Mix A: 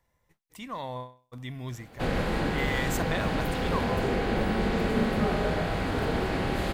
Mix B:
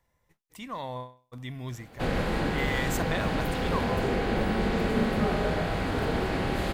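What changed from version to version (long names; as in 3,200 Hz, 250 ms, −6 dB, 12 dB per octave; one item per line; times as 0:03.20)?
nothing changed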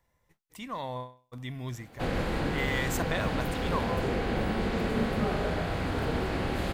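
reverb: off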